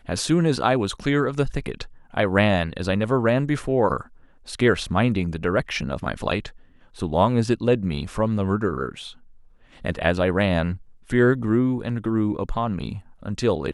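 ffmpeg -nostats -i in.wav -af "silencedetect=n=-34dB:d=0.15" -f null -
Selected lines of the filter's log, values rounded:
silence_start: 1.86
silence_end: 2.14 | silence_duration: 0.28
silence_start: 4.02
silence_end: 4.48 | silence_duration: 0.46
silence_start: 6.50
silence_end: 6.97 | silence_duration: 0.47
silence_start: 9.12
silence_end: 9.84 | silence_duration: 0.73
silence_start: 10.77
silence_end: 11.10 | silence_duration: 0.33
silence_start: 12.99
silence_end: 13.23 | silence_duration: 0.24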